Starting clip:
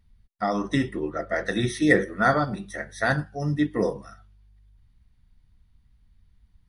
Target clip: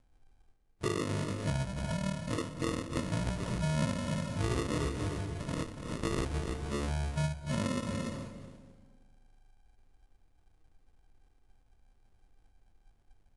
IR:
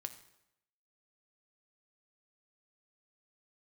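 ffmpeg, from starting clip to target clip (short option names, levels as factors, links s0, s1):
-filter_complex "[0:a]aexciter=amount=2.4:drive=7:freq=6900,acrusher=samples=28:mix=1:aa=0.000001,lowshelf=f=120:g=-5.5,asplit=2[s0][s1];[s1]adelay=117,lowpass=f=1300:p=1,volume=0.15,asplit=2[s2][s3];[s3]adelay=117,lowpass=f=1300:p=1,volume=0.51,asplit=2[s4][s5];[s5]adelay=117,lowpass=f=1300:p=1,volume=0.51,asplit=2[s6][s7];[s7]adelay=117,lowpass=f=1300:p=1,volume=0.51,asplit=2[s8][s9];[s9]adelay=117,lowpass=f=1300:p=1,volume=0.51[s10];[s0][s2][s4][s6][s8][s10]amix=inputs=6:normalize=0,asplit=2[s11][s12];[1:a]atrim=start_sample=2205,adelay=145[s13];[s12][s13]afir=irnorm=-1:irlink=0,volume=0.447[s14];[s11][s14]amix=inputs=2:normalize=0,asetrate=22050,aresample=44100,acompressor=threshold=0.0282:ratio=4"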